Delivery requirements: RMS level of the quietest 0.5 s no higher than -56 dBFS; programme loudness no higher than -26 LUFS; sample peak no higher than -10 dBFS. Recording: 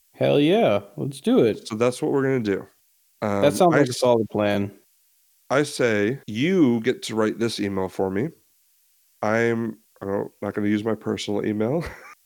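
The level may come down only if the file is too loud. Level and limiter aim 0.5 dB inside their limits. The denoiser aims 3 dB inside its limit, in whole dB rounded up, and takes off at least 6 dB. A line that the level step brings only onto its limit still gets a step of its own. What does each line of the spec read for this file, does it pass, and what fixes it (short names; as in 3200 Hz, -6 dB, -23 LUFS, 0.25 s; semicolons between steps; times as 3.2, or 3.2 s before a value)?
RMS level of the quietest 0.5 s -63 dBFS: OK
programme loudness -22.5 LUFS: fail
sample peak -5.0 dBFS: fail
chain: gain -4 dB; limiter -10.5 dBFS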